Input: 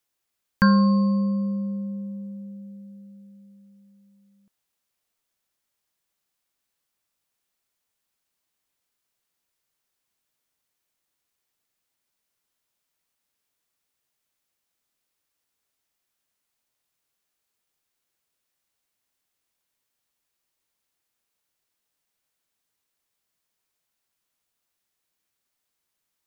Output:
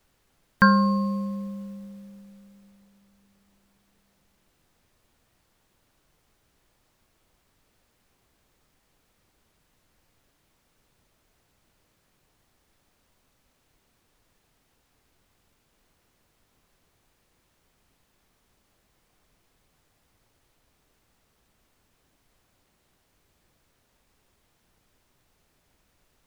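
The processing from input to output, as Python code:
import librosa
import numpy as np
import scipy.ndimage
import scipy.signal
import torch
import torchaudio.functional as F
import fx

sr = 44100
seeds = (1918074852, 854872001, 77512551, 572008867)

y = fx.peak_eq(x, sr, hz=1300.0, db=8.0, octaves=2.6)
y = fx.dmg_noise_colour(y, sr, seeds[0], colour='pink', level_db=-50.0)
y = fx.upward_expand(y, sr, threshold_db=-43.0, expansion=1.5)
y = y * librosa.db_to_amplitude(-2.0)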